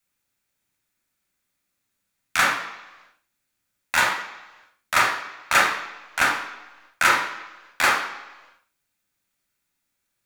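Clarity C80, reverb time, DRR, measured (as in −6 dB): 9.0 dB, 1.1 s, 0.5 dB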